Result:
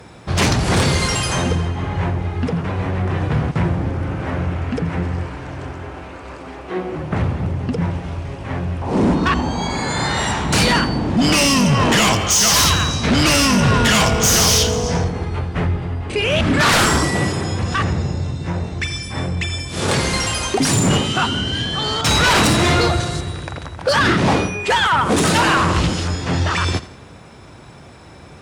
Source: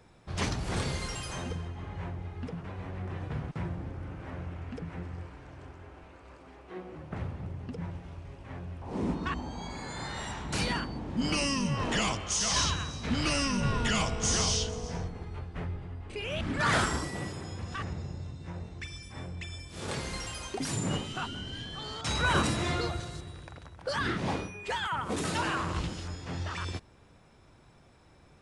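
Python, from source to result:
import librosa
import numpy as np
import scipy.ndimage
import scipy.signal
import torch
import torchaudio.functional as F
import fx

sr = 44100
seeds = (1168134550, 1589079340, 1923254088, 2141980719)

p1 = scipy.signal.sosfilt(scipy.signal.butter(2, 62.0, 'highpass', fs=sr, output='sos'), x)
p2 = fx.fold_sine(p1, sr, drive_db=11, ceiling_db=-14.0)
p3 = p2 + fx.echo_feedback(p2, sr, ms=84, feedback_pct=44, wet_db=-17.0, dry=0)
y = p3 * librosa.db_to_amplitude(3.5)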